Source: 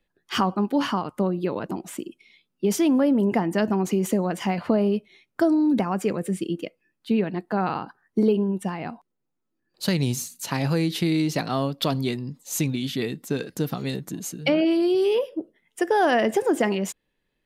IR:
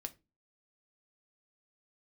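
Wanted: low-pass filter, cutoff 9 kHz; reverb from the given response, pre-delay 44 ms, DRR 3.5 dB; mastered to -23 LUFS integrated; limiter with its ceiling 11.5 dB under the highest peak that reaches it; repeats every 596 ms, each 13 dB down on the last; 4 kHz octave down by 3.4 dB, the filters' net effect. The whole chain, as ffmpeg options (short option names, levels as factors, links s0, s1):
-filter_complex "[0:a]lowpass=9000,equalizer=f=4000:t=o:g=-4.5,alimiter=limit=0.0944:level=0:latency=1,aecho=1:1:596|1192|1788:0.224|0.0493|0.0108,asplit=2[s0][s1];[1:a]atrim=start_sample=2205,adelay=44[s2];[s1][s2]afir=irnorm=-1:irlink=0,volume=0.944[s3];[s0][s3]amix=inputs=2:normalize=0,volume=1.78"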